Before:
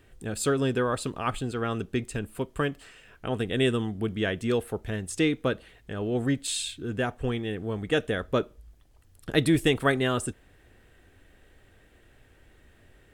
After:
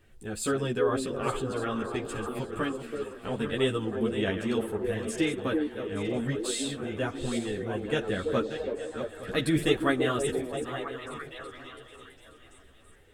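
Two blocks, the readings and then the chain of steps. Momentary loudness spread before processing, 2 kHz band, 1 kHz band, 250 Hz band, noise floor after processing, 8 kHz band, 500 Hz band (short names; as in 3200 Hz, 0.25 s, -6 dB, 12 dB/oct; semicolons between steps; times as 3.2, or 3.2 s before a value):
10 LU, -2.5 dB, -1.0 dB, -1.5 dB, -54 dBFS, -2.0 dB, 0.0 dB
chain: regenerating reverse delay 0.434 s, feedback 49%, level -9 dB; delay with a stepping band-pass 0.33 s, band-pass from 380 Hz, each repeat 0.7 oct, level -2.5 dB; ensemble effect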